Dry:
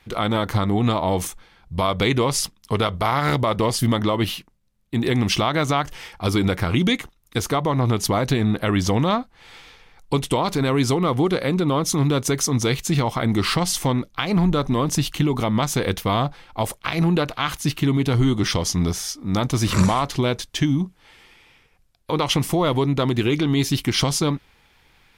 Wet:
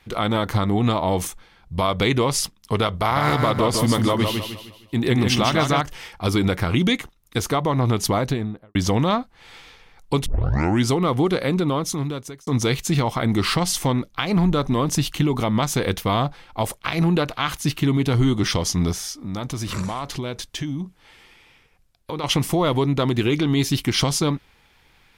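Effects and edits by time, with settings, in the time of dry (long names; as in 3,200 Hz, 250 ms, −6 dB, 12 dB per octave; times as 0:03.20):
0:02.95–0:05.81: repeating echo 154 ms, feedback 37%, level −5 dB
0:08.11–0:08.75: fade out and dull
0:10.26: tape start 0.61 s
0:11.57–0:12.47: fade out
0:18.93–0:22.24: downward compressor 2.5 to 1, threshold −27 dBFS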